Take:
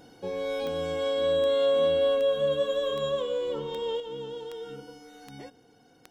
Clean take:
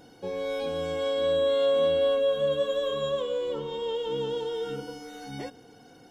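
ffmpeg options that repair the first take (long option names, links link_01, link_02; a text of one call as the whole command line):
ffmpeg -i in.wav -af "adeclick=threshold=4,asetnsamples=nb_out_samples=441:pad=0,asendcmd='4 volume volume 7dB',volume=0dB" out.wav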